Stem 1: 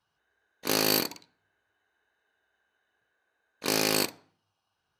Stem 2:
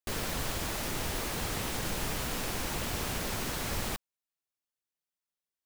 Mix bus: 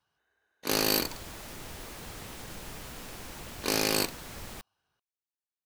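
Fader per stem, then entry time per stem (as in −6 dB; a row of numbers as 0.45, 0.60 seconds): −1.5, −9.0 decibels; 0.00, 0.65 seconds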